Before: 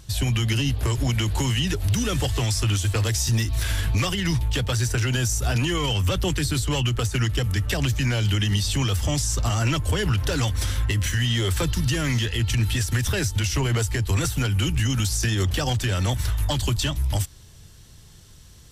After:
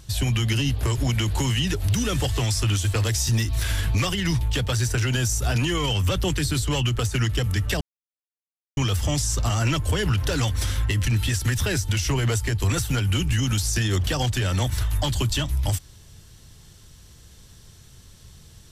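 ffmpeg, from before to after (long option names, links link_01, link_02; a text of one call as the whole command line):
ffmpeg -i in.wav -filter_complex "[0:a]asplit=4[link_01][link_02][link_03][link_04];[link_01]atrim=end=7.81,asetpts=PTS-STARTPTS,afade=type=out:start_time=7.806:duration=0.004:curve=hsin[link_05];[link_02]atrim=start=7.81:end=8.77,asetpts=PTS-STARTPTS,volume=0[link_06];[link_03]atrim=start=8.77:end=11.052,asetpts=PTS-STARTPTS,afade=type=in:duration=0.004:curve=hsin[link_07];[link_04]atrim=start=12.518[link_08];[link_05][link_06][link_07]concat=n=3:v=0:a=1[link_09];[link_09][link_08]acrossfade=duration=0.004:curve1=hsin:curve2=hsin" out.wav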